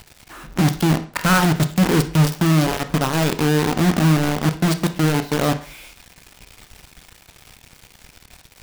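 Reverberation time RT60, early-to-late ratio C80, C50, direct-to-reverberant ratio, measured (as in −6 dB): 0.45 s, 18.0 dB, 14.0 dB, 9.0 dB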